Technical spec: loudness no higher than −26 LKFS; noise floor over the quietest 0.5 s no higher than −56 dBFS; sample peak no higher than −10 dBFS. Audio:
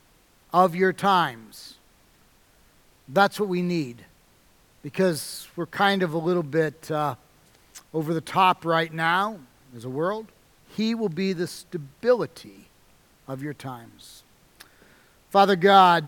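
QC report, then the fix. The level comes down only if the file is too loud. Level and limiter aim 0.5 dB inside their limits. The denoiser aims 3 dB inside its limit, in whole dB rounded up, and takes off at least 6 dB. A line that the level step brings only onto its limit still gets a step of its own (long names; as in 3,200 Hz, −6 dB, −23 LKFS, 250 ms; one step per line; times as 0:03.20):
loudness −23.5 LKFS: out of spec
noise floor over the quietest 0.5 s −59 dBFS: in spec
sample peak −3.0 dBFS: out of spec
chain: level −3 dB
brickwall limiter −10.5 dBFS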